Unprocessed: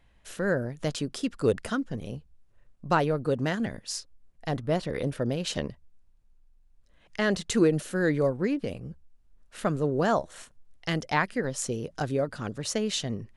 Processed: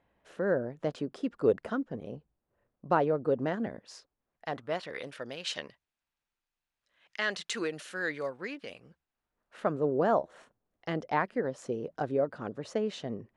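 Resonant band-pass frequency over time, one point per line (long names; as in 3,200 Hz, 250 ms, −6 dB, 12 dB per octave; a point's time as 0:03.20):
resonant band-pass, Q 0.66
0:03.78 540 Hz
0:05.07 2,400 Hz
0:08.77 2,400 Hz
0:09.83 550 Hz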